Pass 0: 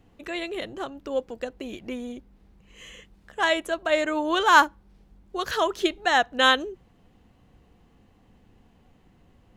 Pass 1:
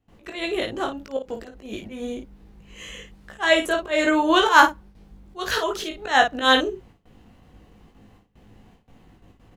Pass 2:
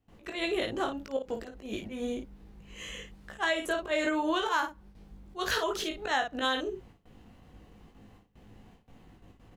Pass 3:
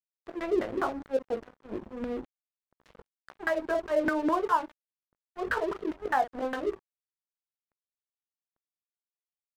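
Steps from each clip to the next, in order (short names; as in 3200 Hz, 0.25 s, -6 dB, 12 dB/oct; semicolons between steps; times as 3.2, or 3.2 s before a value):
gate with hold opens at -48 dBFS; auto swell 0.158 s; early reflections 19 ms -4 dB, 54 ms -7.5 dB; gain +5 dB
compressor 16:1, threshold -22 dBFS, peak gain reduction 15 dB; gain -3 dB
LFO low-pass saw down 4.9 Hz 270–1600 Hz; crossover distortion -41 dBFS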